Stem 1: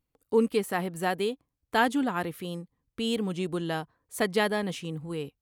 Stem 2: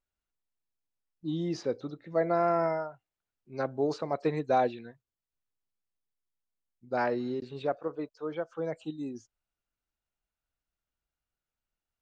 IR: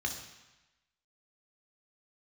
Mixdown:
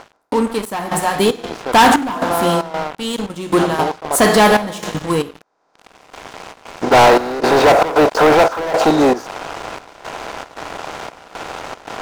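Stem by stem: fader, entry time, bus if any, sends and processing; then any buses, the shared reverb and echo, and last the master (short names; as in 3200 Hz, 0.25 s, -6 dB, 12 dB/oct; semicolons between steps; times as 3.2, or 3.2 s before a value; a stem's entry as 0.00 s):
+2.0 dB, 0.00 s, send -8 dB, step gate "xx..xx.x.xxxx.xx" 91 bpm -12 dB
+2.0 dB, 0.00 s, no send, per-bin compression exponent 0.4; auto duck -20 dB, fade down 0.30 s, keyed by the first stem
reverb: on, RT60 1.0 s, pre-delay 3 ms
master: graphic EQ 125/1000/8000 Hz -8/+11/+4 dB; sample leveller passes 5; step gate ".xxxx..xxx" 115 bpm -12 dB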